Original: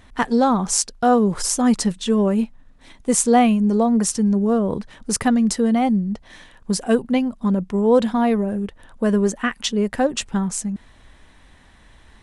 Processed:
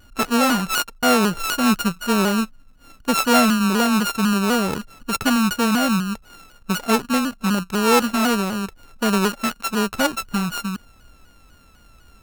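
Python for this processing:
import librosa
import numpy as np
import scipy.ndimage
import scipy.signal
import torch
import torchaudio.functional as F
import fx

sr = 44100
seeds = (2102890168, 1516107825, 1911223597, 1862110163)

y = np.r_[np.sort(x[:len(x) // 32 * 32].reshape(-1, 32), axis=1).ravel(), x[len(x) // 32 * 32:]]
y = fx.vibrato_shape(y, sr, shape='saw_down', rate_hz=4.0, depth_cents=100.0)
y = y * librosa.db_to_amplitude(-1.0)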